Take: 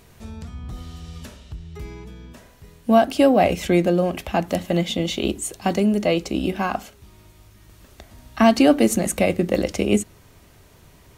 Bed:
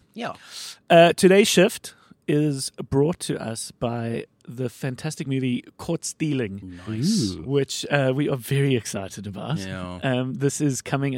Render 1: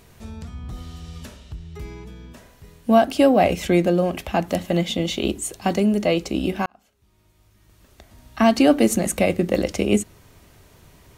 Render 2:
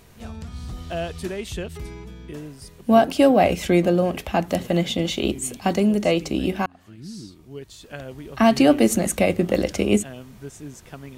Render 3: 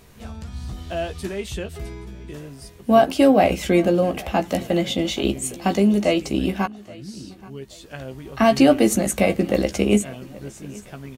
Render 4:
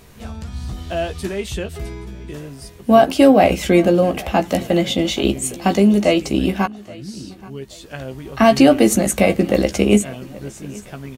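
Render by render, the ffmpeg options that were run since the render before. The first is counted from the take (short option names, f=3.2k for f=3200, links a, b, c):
-filter_complex "[0:a]asplit=2[a][b];[a]atrim=end=6.66,asetpts=PTS-STARTPTS,afade=t=out:st=6.656:d=0.004:c=hsin[c];[b]atrim=start=6.66,asetpts=PTS-STARTPTS,afade=t=in:d=2.13[d];[c][d]concat=n=2:v=0:a=1"
-filter_complex "[1:a]volume=-15.5dB[a];[0:a][a]amix=inputs=2:normalize=0"
-filter_complex "[0:a]asplit=2[a][b];[b]adelay=15,volume=-7.5dB[c];[a][c]amix=inputs=2:normalize=0,aecho=1:1:826|1652:0.0794|0.0246"
-af "volume=4dB,alimiter=limit=-1dB:level=0:latency=1"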